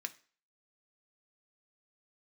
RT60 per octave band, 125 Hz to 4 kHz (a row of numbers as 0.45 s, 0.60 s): 0.35 s, 0.40 s, 0.40 s, 0.40 s, 0.40 s, 0.40 s